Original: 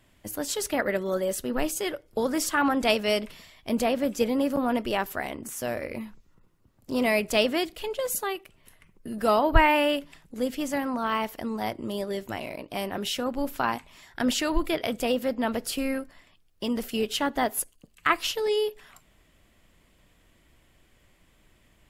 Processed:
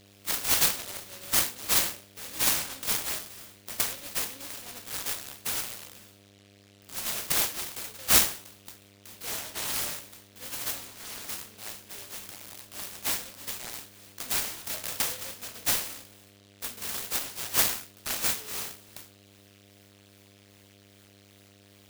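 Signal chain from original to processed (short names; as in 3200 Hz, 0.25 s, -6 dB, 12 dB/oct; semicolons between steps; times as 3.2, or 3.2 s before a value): spectral trails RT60 0.43 s; high shelf 2200 Hz +10 dB; harmonic tremolo 2.5 Hz, depth 50%, crossover 1000 Hz; differentiator; buzz 100 Hz, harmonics 7, -57 dBFS -2 dB/oct; 14.64–15.34 comb 1.6 ms, depth 73%; noise-modulated delay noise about 3000 Hz, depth 0.29 ms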